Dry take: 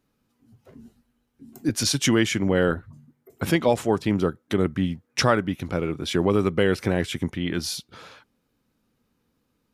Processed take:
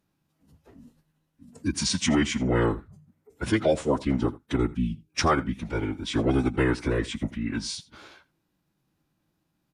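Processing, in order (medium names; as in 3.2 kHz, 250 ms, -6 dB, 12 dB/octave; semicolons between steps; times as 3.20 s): formant-preserving pitch shift -7.5 st; time-frequency box 4.75–5.12 s, 440–2200 Hz -14 dB; delay 83 ms -20 dB; trim -2 dB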